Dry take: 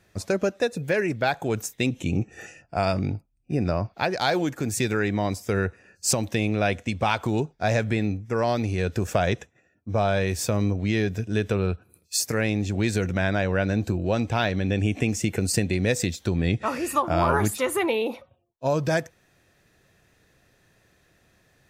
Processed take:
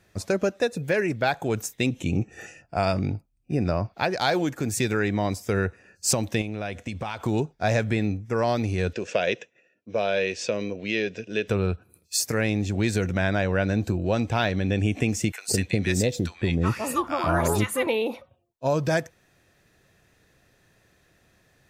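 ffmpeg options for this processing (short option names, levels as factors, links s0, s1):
-filter_complex "[0:a]asettb=1/sr,asplit=3[s0][s1][s2];[s0]atrim=end=6.414[s3];[s1]atrim=start=6.41:end=7.22,asetpts=PTS-STARTPTS,afade=t=in:d=0.004:c=qsin,afade=t=out:st=0.806:d=0.004:c=qsin,acompressor=threshold=0.0447:ratio=6:attack=3.2:release=140:knee=1:detection=peak[s4];[s2]atrim=start=7.216[s5];[s3][s4]acrossfade=d=0.004:c1=hsin:c2=qsin[s6];[s6][s5]acrossfade=d=0.004:c1=qsin:c2=hsin,asettb=1/sr,asplit=3[s7][s8][s9];[s7]atrim=end=8.934[s10];[s8]atrim=start=8.93:end=11.48,asetpts=PTS-STARTPTS,afade=t=in:d=0.004:c=qsin,afade=t=out:st=2.546:d=0.004:c=qsin,highpass=280,equalizer=f=290:t=q:w=4:g=-4,equalizer=f=510:t=q:w=4:g=5,equalizer=f=800:t=q:w=4:g=-9,equalizer=f=1200:t=q:w=4:g=-8,equalizer=f=2700:t=q:w=4:g=8,lowpass=f=6200:w=0.5412,lowpass=f=6200:w=1.3066[s11];[s9]atrim=start=11.476[s12];[s10][s11]acrossfade=d=0.004:c1=hsin:c2=qsin[s13];[s13][s12]acrossfade=d=0.004:c1=qsin:c2=hsin,asettb=1/sr,asplit=3[s14][s15][s16];[s14]atrim=end=15.324[s17];[s15]atrim=start=15.32:end=17.87,asetpts=PTS-STARTPTS,afade=t=in:d=0.004:c=qsin,afade=t=out:st=2.546:d=0.004:c=qsin,acrossover=split=950[s18][s19];[s18]adelay=160[s20];[s20][s19]amix=inputs=2:normalize=0,atrim=end_sample=112455[s21];[s16]atrim=start=17.866[s22];[s17][s21]acrossfade=d=0.004:c1=hsin:c2=qsin[s23];[s23][s22]acrossfade=d=0.004:c1=qsin:c2=hsin"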